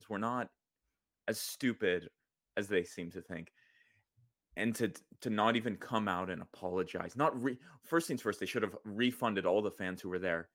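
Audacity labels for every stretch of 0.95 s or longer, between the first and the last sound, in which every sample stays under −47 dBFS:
3.480000	4.570000	silence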